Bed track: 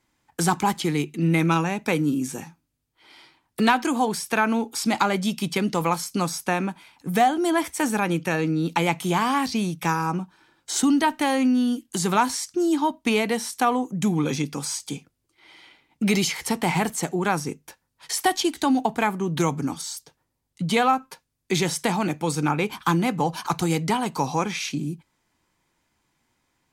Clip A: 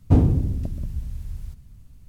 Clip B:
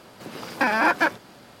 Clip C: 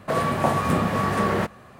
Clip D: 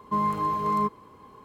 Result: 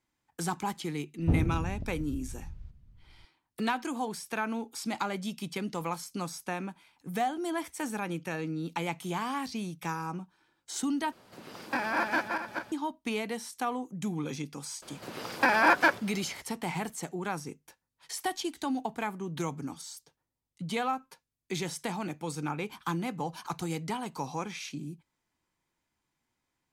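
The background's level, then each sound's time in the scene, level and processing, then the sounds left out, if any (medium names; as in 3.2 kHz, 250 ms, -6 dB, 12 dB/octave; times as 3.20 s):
bed track -11 dB
1.17 s: add A -10.5 dB + distance through air 170 m
11.12 s: replace with B -10 dB + backward echo that repeats 210 ms, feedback 45%, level -3 dB
14.82 s: add B -2 dB + peaking EQ 210 Hz -4 dB 0.97 oct
not used: C, D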